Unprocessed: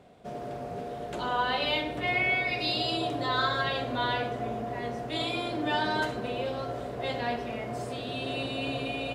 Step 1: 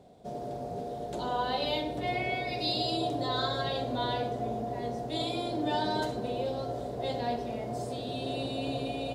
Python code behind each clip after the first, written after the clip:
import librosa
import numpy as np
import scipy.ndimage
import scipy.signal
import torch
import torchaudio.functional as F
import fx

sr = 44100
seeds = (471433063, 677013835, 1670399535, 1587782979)

y = fx.band_shelf(x, sr, hz=1800.0, db=-9.5, octaves=1.7)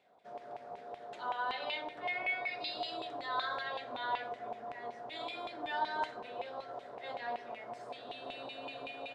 y = fx.filter_lfo_bandpass(x, sr, shape='saw_down', hz=5.3, low_hz=940.0, high_hz=2500.0, q=3.0)
y = F.gain(torch.from_numpy(y), 5.0).numpy()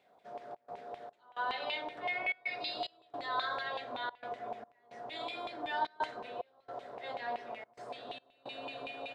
y = fx.step_gate(x, sr, bpm=110, pattern='xxxx.xxx..xxx', floor_db=-24.0, edge_ms=4.5)
y = F.gain(torch.from_numpy(y), 1.0).numpy()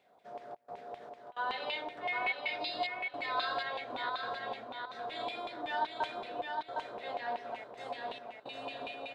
y = fx.echo_feedback(x, sr, ms=760, feedback_pct=30, wet_db=-4.0)